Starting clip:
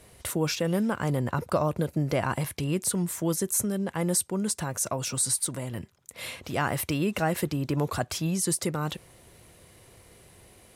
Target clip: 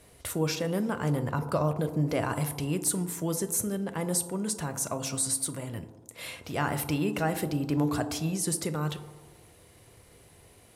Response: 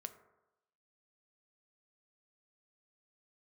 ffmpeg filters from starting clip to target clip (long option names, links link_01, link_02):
-filter_complex "[1:a]atrim=start_sample=2205,asetrate=29988,aresample=44100[link_01];[0:a][link_01]afir=irnorm=-1:irlink=0,asettb=1/sr,asplit=3[link_02][link_03][link_04];[link_02]atrim=end=1.734[link_05];[link_03]atrim=start=1.73:end=3.06,asetpts=PTS-STARTPTS,afade=type=in:duration=0.004:curve=qsin,afade=type=out:start_time=1.326:duration=0.004:curve=qsin,adynamicequalizer=threshold=0.00631:dfrequency=5800:dqfactor=0.7:tfrequency=5800:tqfactor=0.7:attack=5:release=100:ratio=0.375:range=2:mode=boostabove:tftype=highshelf[link_06];[link_04]atrim=start=3.056[link_07];[link_05][link_06]acrossfade=duration=0.004:curve1=hsin:curve2=qsin[link_08];[link_08][link_07]acrossfade=duration=0.004:curve1=qsin:curve2=hsin"